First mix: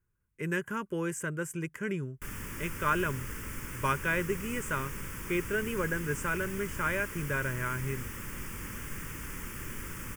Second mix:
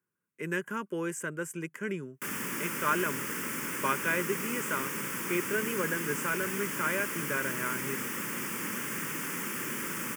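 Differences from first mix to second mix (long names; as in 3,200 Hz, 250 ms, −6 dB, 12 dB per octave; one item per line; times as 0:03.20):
background +7.5 dB
master: add high-pass filter 180 Hz 24 dB per octave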